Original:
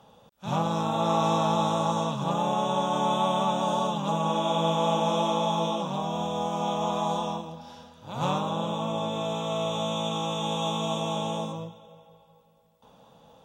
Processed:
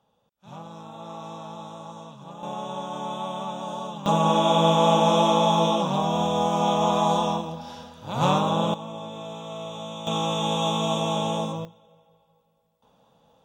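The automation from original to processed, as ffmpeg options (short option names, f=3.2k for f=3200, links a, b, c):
-af "asetnsamples=n=441:p=0,asendcmd='2.43 volume volume -6.5dB;4.06 volume volume 6dB;8.74 volume volume -6.5dB;10.07 volume volume 4dB;11.65 volume volume -6dB',volume=-14dB"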